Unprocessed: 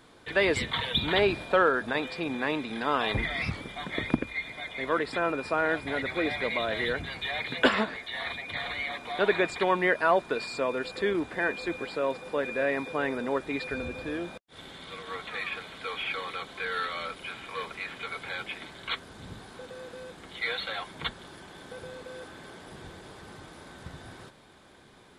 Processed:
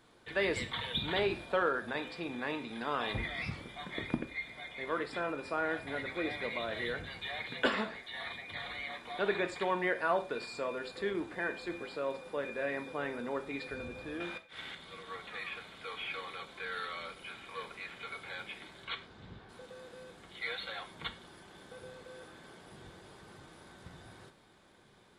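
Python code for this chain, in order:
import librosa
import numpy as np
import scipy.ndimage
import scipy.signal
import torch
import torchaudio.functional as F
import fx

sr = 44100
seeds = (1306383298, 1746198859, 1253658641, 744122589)

y = fx.peak_eq(x, sr, hz=2100.0, db=14.0, octaves=2.1, at=(14.2, 14.75))
y = fx.lowpass(y, sr, hz=fx.line((18.84, 7000.0), (19.48, 3000.0)), slope=12, at=(18.84, 19.48), fade=0.02)
y = fx.rev_gated(y, sr, seeds[0], gate_ms=140, shape='falling', drr_db=7.5)
y = F.gain(torch.from_numpy(y), -8.0).numpy()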